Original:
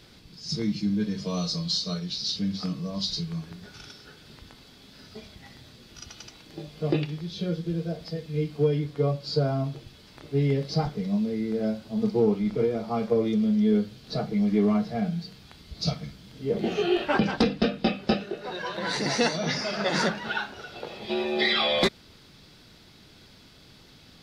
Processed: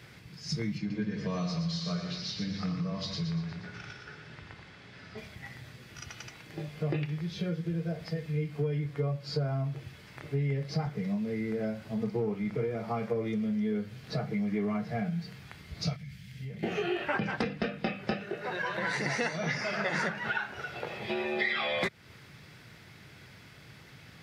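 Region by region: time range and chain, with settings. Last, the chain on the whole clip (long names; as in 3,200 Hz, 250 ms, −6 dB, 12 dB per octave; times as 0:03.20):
0:00.78–0:05.18: high-frequency loss of the air 91 metres + mains-hum notches 50/100/150/200/250/300/350/400/450/500 Hz + echo with a time of its own for lows and highs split 1,200 Hz, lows 84 ms, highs 119 ms, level −5.5 dB
0:15.96–0:16.63: flat-topped bell 600 Hz −14.5 dB 2.7 octaves + downward compressor 12 to 1, threshold −39 dBFS
whole clip: octave-band graphic EQ 125/250/2,000/4,000 Hz +7/−5/+9/−8 dB; downward compressor 3 to 1, threshold −30 dBFS; high-pass filter 73 Hz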